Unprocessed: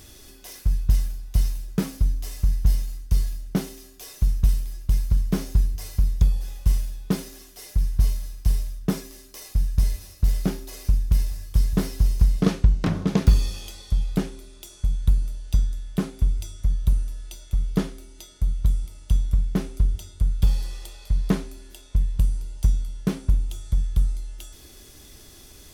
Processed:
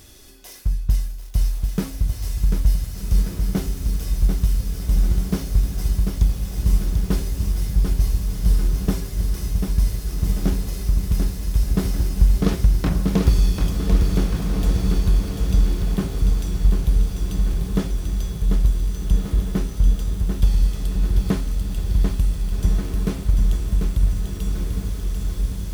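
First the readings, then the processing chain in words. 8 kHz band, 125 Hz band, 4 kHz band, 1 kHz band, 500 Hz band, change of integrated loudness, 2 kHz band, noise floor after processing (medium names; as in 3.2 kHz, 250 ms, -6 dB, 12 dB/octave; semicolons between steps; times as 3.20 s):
+3.5 dB, +3.5 dB, +3.5 dB, +3.5 dB, +3.5 dB, +3.0 dB, +3.5 dB, -31 dBFS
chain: echo that smears into a reverb 1592 ms, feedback 46%, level -4 dB; bit-crushed delay 742 ms, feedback 55%, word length 7-bit, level -5 dB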